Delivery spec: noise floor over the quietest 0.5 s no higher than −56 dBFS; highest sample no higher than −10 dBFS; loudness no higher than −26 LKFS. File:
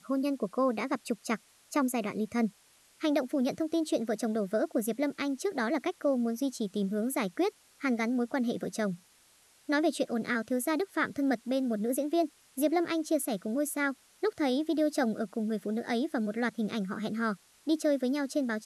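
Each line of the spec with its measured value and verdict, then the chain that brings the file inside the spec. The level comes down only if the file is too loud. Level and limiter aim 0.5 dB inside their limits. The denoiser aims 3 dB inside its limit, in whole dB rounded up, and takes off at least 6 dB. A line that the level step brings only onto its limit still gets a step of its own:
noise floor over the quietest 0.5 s −63 dBFS: in spec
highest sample −16.5 dBFS: in spec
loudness −31.5 LKFS: in spec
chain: no processing needed

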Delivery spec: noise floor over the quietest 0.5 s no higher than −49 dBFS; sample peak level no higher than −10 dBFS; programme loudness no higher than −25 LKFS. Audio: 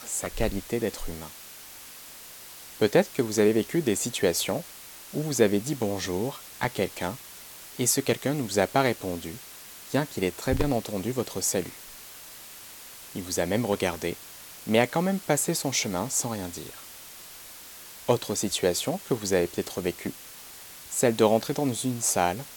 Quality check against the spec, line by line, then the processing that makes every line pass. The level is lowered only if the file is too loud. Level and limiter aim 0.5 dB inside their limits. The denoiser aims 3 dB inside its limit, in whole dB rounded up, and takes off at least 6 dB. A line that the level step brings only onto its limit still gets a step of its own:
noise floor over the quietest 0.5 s −45 dBFS: out of spec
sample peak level −6.0 dBFS: out of spec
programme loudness −27.0 LKFS: in spec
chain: broadband denoise 7 dB, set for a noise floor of −45 dBFS
brickwall limiter −10.5 dBFS

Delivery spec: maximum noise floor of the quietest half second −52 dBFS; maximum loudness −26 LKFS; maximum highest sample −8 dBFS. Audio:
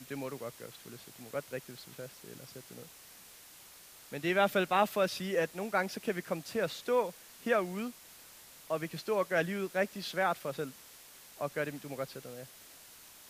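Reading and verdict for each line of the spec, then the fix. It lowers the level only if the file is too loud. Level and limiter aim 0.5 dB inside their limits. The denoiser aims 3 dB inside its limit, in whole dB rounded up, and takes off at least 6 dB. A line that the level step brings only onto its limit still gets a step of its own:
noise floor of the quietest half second −55 dBFS: in spec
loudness −34.0 LKFS: in spec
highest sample −13.5 dBFS: in spec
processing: no processing needed

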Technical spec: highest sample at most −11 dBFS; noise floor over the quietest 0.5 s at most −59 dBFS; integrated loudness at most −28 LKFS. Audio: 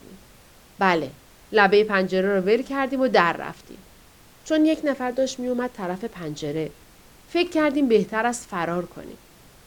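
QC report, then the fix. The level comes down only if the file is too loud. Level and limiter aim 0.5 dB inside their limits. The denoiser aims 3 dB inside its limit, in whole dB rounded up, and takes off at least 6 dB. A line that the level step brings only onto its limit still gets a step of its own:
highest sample −2.0 dBFS: out of spec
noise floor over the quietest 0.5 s −51 dBFS: out of spec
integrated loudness −22.5 LKFS: out of spec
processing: broadband denoise 6 dB, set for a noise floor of −51 dBFS
level −6 dB
brickwall limiter −11.5 dBFS

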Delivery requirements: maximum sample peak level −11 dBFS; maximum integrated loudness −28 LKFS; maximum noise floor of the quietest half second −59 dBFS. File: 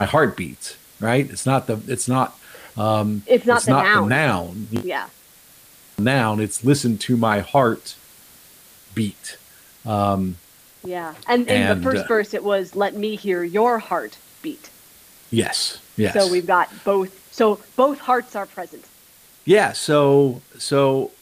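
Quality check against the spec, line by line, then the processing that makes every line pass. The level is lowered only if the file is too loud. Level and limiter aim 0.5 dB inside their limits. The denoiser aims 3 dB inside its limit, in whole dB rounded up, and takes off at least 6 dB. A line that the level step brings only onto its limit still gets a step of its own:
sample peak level −4.0 dBFS: out of spec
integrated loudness −20.0 LKFS: out of spec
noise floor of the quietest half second −50 dBFS: out of spec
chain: broadband denoise 6 dB, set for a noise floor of −50 dBFS
level −8.5 dB

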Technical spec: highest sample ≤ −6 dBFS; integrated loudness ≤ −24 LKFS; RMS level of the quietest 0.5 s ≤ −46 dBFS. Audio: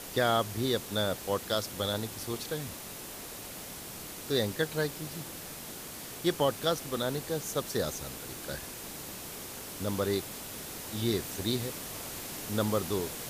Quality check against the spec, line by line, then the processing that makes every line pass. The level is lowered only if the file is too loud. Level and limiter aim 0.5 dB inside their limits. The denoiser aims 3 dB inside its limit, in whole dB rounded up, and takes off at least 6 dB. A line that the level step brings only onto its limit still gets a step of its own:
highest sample −15.0 dBFS: in spec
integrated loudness −33.5 LKFS: in spec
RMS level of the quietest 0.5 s −43 dBFS: out of spec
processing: broadband denoise 6 dB, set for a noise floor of −43 dBFS

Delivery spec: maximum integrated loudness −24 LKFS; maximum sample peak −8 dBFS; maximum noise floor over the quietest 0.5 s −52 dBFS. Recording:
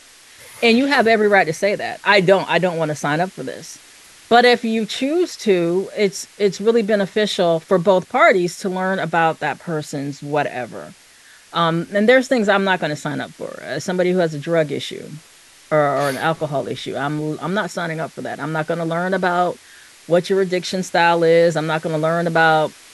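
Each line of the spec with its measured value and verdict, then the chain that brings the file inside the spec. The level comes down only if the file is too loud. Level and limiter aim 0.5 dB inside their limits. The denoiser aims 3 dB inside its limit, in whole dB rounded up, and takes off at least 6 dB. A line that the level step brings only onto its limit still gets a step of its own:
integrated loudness −18.0 LKFS: out of spec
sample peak −2.0 dBFS: out of spec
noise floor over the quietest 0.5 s −47 dBFS: out of spec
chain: level −6.5 dB

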